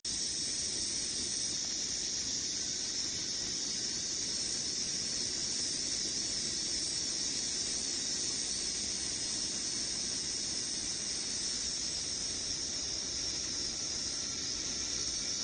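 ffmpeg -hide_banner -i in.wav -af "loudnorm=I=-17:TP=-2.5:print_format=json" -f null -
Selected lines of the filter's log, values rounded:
"input_i" : "-33.0",
"input_tp" : "-19.1",
"input_lra" : "1.3",
"input_thresh" : "-43.0",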